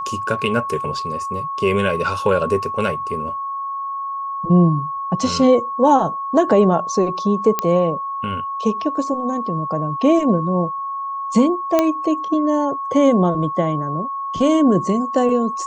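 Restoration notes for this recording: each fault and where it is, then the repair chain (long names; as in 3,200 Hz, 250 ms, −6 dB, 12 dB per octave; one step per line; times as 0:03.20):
whistle 1,100 Hz −23 dBFS
0:07.59: click −4 dBFS
0:11.79: click −3 dBFS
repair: click removal
notch filter 1,100 Hz, Q 30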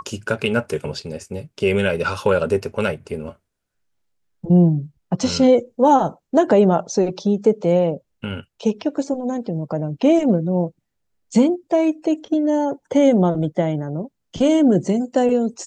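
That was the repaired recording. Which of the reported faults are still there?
none of them is left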